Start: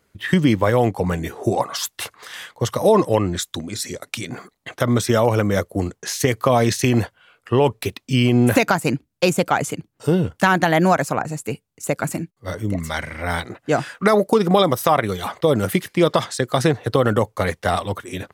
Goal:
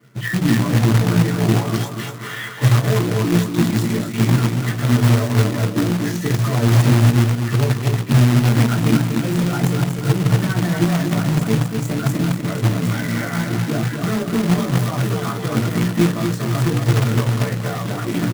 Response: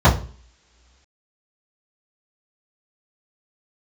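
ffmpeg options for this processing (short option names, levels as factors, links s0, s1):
-filter_complex "[0:a]bandreject=f=60:t=h:w=6,bandreject=f=120:t=h:w=6,bandreject=f=180:t=h:w=6,bandreject=f=240:t=h:w=6,bandreject=f=300:t=h:w=6,bandreject=f=360:t=h:w=6,bandreject=f=420:t=h:w=6,bandreject=f=480:t=h:w=6,bandreject=f=540:t=h:w=6,acompressor=threshold=0.0398:ratio=10,asoftclip=type=tanh:threshold=0.0282,flanger=delay=15.5:depth=2.7:speed=0.4,aecho=1:1:240|480|720|960|1200:0.562|0.236|0.0992|0.0417|0.0175[s0];[1:a]atrim=start_sample=2205,asetrate=83790,aresample=44100[s1];[s0][s1]afir=irnorm=-1:irlink=0,acrusher=bits=2:mode=log:mix=0:aa=0.000001,alimiter=level_in=0.501:limit=0.891:release=50:level=0:latency=1,volume=0.596"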